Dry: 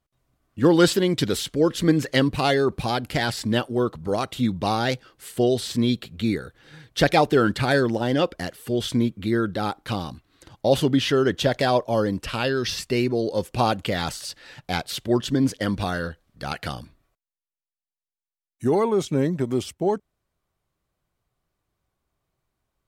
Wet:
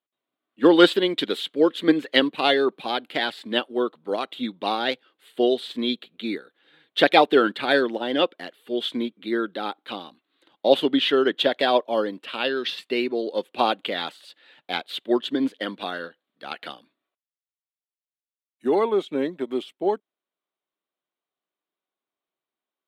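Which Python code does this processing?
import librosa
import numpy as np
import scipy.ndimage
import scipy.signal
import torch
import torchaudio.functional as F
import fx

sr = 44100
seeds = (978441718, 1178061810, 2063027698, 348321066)

y = scipy.signal.sosfilt(scipy.signal.butter(4, 250.0, 'highpass', fs=sr, output='sos'), x)
y = fx.high_shelf_res(y, sr, hz=4500.0, db=-8.0, q=3.0)
y = fx.upward_expand(y, sr, threshold_db=-40.0, expansion=1.5)
y = y * librosa.db_to_amplitude(3.5)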